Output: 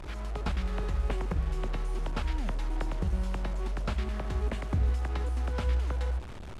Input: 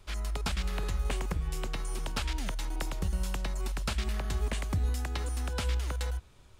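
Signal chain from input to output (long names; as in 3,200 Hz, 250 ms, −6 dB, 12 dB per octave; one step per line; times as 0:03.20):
linear delta modulator 64 kbit/s, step −36.5 dBFS
low-pass filter 1,100 Hz 6 dB per octave
mains-hum notches 50/100/150/200/250 Hz
level +3 dB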